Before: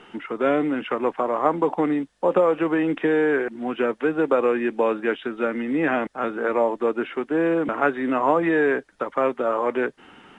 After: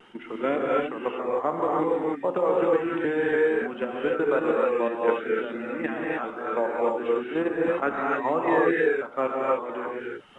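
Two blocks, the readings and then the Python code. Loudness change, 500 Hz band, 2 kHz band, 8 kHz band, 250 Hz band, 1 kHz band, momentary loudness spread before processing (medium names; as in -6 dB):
-3.0 dB, -2.0 dB, -3.0 dB, no reading, -5.5 dB, -2.5 dB, 6 LU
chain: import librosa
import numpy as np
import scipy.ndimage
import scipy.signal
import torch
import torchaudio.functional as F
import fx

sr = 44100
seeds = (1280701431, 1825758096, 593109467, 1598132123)

p1 = fx.vibrato(x, sr, rate_hz=1.9, depth_cents=54.0)
p2 = fx.level_steps(p1, sr, step_db=10)
p3 = fx.dereverb_blind(p2, sr, rt60_s=1.1)
p4 = p3 + fx.echo_single(p3, sr, ms=1184, db=-23.5, dry=0)
p5 = fx.rev_gated(p4, sr, seeds[0], gate_ms=330, shape='rising', drr_db=-3.5)
y = F.gain(torch.from_numpy(p5), -3.5).numpy()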